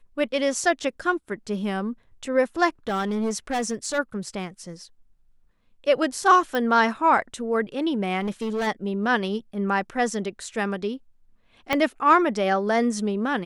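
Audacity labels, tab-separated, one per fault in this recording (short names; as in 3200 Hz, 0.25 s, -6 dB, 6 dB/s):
2.880000	3.990000	clipped -21.5 dBFS
6.550000	6.550000	pop -14 dBFS
8.200000	8.680000	clipped -23 dBFS
11.730000	11.730000	pop -8 dBFS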